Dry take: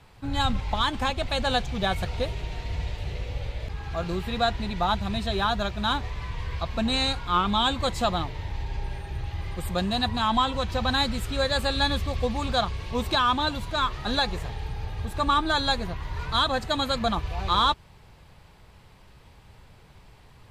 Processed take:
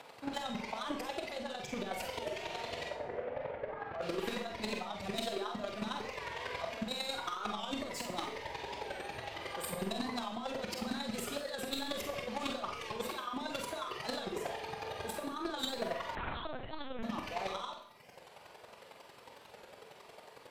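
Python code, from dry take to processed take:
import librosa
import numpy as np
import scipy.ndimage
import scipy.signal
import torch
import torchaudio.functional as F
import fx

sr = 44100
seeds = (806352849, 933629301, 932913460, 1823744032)

p1 = fx.lowpass(x, sr, hz=1800.0, slope=24, at=(2.89, 4.01))
p2 = fx.dereverb_blind(p1, sr, rt60_s=0.63)
p3 = scipy.signal.sosfilt(scipy.signal.butter(2, 330.0, 'highpass', fs=sr, output='sos'), p2)
p4 = fx.peak_eq(p3, sr, hz=560.0, db=7.0, octaves=0.73)
p5 = fx.over_compress(p4, sr, threshold_db=-32.0, ratio=-1.0)
p6 = 10.0 ** (-30.5 / 20.0) * np.tanh(p5 / 10.0 ** (-30.5 / 20.0))
p7 = fx.chopper(p6, sr, hz=11.0, depth_pct=65, duty_pct=15)
p8 = p7 + fx.room_early_taps(p7, sr, ms=(47, 63), db=(-7.5, -12.0), dry=0)
p9 = fx.rev_schroeder(p8, sr, rt60_s=0.69, comb_ms=26, drr_db=5.5)
p10 = fx.lpc_vocoder(p9, sr, seeds[0], excitation='pitch_kept', order=8, at=(16.15, 17.03))
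p11 = fx.record_warp(p10, sr, rpm=45.0, depth_cents=100.0)
y = F.gain(torch.from_numpy(p11), 1.0).numpy()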